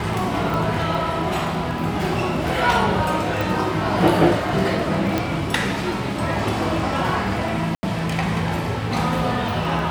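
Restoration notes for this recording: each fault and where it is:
crackle 11 per s -27 dBFS
0.54 s: pop
3.41 s: pop
5.18 s: pop -7 dBFS
7.75–7.83 s: dropout 80 ms

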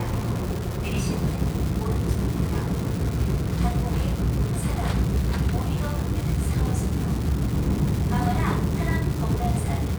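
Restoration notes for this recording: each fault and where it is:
crackle 560 per s -28 dBFS

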